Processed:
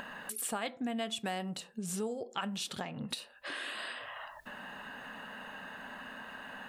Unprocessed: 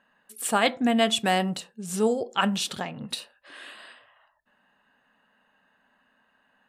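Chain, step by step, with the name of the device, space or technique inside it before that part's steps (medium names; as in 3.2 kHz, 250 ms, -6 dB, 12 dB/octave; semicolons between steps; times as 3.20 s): upward and downward compression (upward compressor, threshold -33 dBFS; compression 4:1, threshold -40 dBFS, peak gain reduction 18.5 dB); trim +3 dB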